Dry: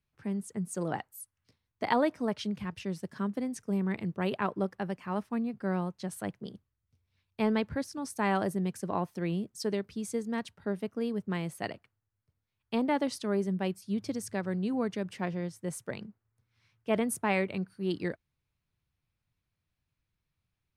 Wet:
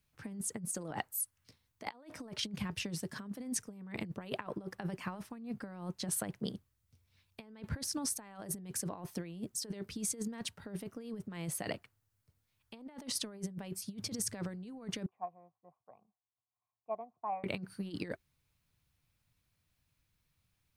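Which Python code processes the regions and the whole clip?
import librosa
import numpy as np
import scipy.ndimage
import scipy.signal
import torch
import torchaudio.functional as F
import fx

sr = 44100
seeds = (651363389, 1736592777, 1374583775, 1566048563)

y = fx.chain(x, sr, fx.formant_cascade(vowel='a'),
    fx.upward_expand(threshold_db=-51.0, expansion=1.5), at=(15.06, 17.44))
y = fx.high_shelf(y, sr, hz=4200.0, db=7.0)
y = fx.notch(y, sr, hz=380.0, q=12.0)
y = fx.over_compress(y, sr, threshold_db=-37.0, ratio=-0.5)
y = y * 10.0 ** (-2.0 / 20.0)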